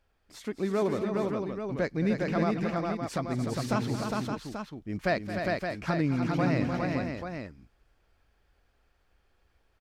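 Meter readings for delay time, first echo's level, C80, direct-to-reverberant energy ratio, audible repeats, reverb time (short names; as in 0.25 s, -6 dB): 0.221 s, -13.0 dB, none, none, 5, none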